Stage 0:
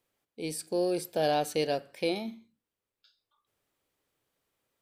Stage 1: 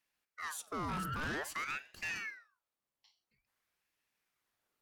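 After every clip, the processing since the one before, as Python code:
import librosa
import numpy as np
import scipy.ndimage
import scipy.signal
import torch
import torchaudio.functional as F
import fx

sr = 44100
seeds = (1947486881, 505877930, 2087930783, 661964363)

y = fx.spec_repair(x, sr, seeds[0], start_s=0.91, length_s=0.43, low_hz=610.0, high_hz=1300.0, source='after')
y = 10.0 ** (-31.0 / 20.0) * np.tanh(y / 10.0 ** (-31.0 / 20.0))
y = fx.ring_lfo(y, sr, carrier_hz=1400.0, swing_pct=60, hz=0.5)
y = F.gain(torch.from_numpy(y), -1.5).numpy()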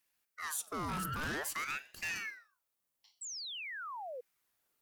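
y = fx.high_shelf(x, sr, hz=7500.0, db=11.0)
y = fx.spec_paint(y, sr, seeds[1], shape='fall', start_s=3.21, length_s=1.0, low_hz=470.0, high_hz=8100.0, level_db=-43.0)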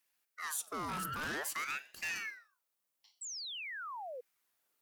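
y = fx.low_shelf(x, sr, hz=160.0, db=-10.0)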